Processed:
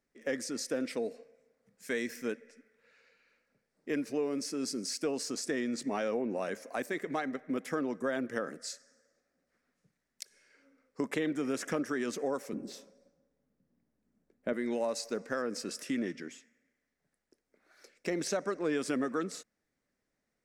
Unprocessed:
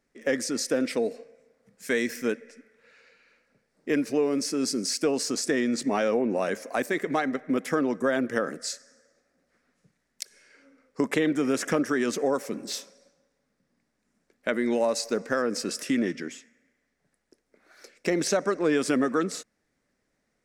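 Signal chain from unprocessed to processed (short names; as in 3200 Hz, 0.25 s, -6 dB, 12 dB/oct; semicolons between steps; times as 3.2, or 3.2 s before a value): 12.53–14.53 tilt shelf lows +8 dB, about 810 Hz; gain -8 dB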